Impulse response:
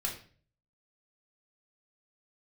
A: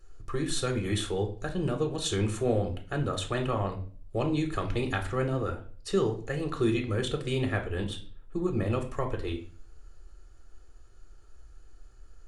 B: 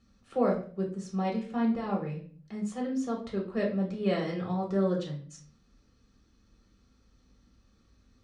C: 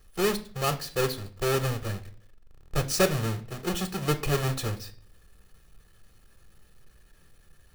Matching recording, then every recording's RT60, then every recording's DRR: B; 0.45, 0.45, 0.45 s; 4.0, -1.5, 8.5 dB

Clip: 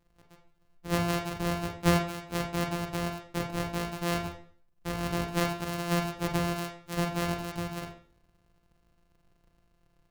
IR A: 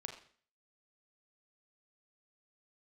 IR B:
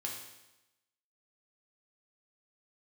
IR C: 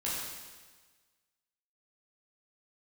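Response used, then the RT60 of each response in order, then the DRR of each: A; 0.45, 0.95, 1.4 s; 2.5, -1.5, -8.0 dB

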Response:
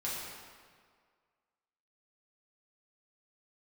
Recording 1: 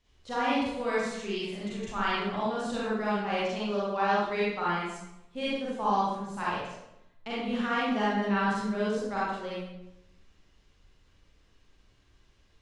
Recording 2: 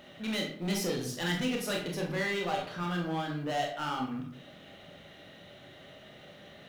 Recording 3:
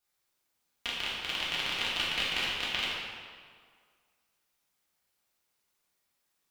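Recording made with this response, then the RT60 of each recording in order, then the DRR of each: 3; 0.85, 0.55, 1.9 s; -8.0, -0.5, -7.5 dB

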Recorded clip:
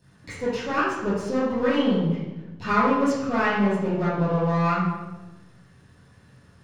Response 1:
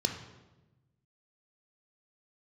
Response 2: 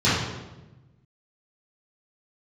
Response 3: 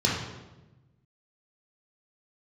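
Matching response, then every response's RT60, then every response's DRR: 2; 1.1, 1.1, 1.1 s; 4.5, -13.0, -4.5 dB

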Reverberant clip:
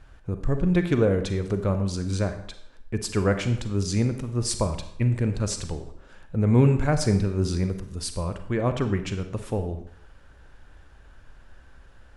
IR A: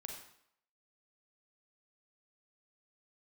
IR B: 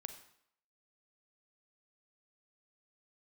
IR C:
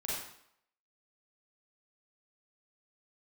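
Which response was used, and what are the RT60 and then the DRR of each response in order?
B; 0.70, 0.70, 0.70 s; 1.5, 8.0, -7.0 dB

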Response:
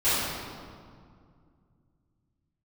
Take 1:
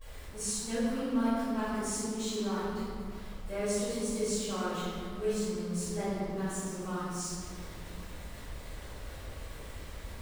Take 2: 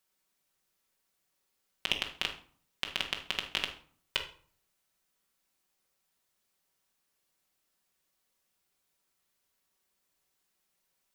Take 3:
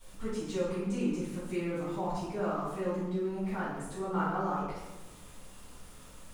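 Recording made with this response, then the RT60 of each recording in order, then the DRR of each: 1; 2.1, 0.50, 1.1 s; -17.5, 1.5, -14.0 dB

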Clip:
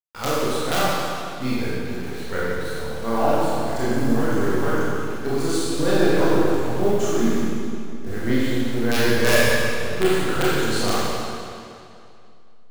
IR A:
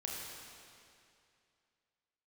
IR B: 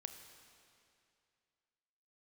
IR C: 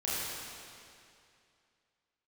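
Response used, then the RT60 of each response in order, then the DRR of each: C; 2.5, 2.5, 2.5 s; -3.5, 6.5, -9.5 dB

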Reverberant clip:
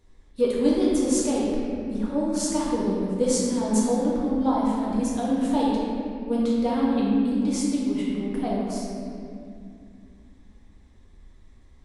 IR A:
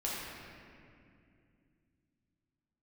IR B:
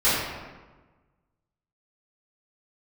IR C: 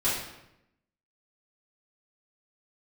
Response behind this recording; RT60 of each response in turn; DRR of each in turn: A; 2.4, 1.3, 0.85 s; -6.5, -14.0, -12.0 dB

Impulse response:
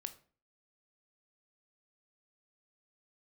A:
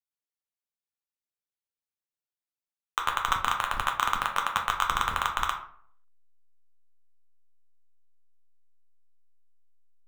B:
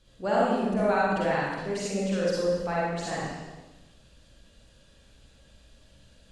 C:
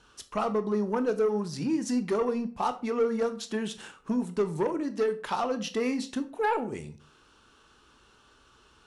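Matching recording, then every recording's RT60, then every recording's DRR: C; 0.55, 1.1, 0.40 s; 1.5, -7.0, 9.5 dB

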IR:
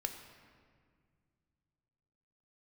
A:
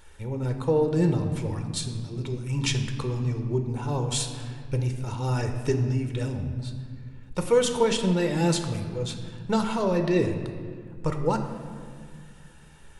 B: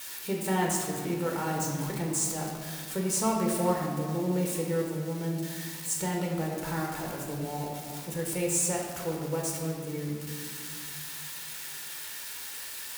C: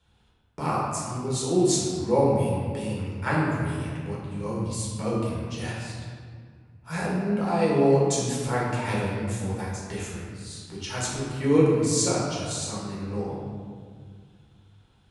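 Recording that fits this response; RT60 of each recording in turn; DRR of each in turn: A; 2.0, 1.9, 1.9 s; 5.0, -2.0, -6.5 dB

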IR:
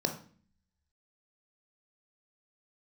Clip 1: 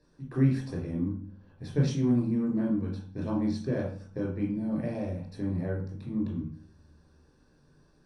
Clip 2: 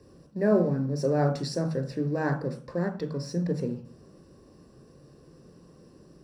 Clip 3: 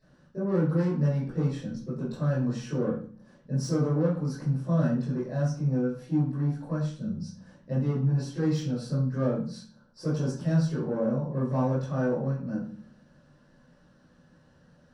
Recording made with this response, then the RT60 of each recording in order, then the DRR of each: 2; 0.45, 0.45, 0.45 s; -3.5, 4.5, -13.5 dB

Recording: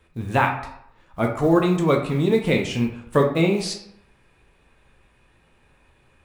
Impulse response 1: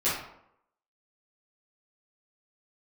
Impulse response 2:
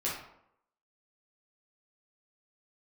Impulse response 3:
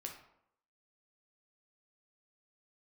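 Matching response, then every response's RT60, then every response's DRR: 3; 0.75, 0.75, 0.75 s; -12.0, -7.0, 1.5 dB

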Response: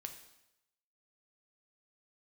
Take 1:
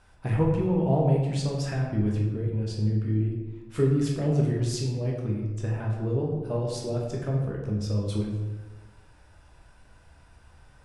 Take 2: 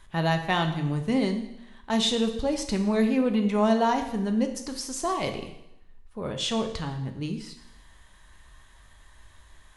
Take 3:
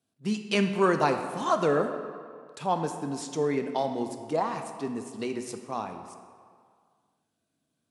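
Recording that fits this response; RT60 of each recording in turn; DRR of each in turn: 2; 1.2, 0.85, 2.0 s; -2.5, 5.0, 6.0 dB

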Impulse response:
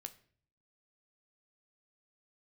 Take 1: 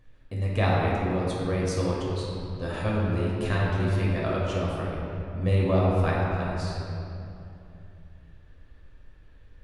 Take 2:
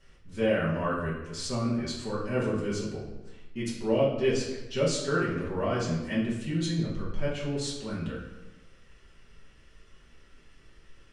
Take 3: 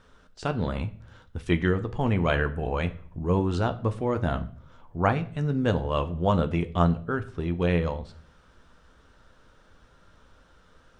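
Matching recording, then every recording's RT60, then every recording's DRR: 3; 2.7, 1.1, 0.50 s; -5.5, -7.5, 8.0 dB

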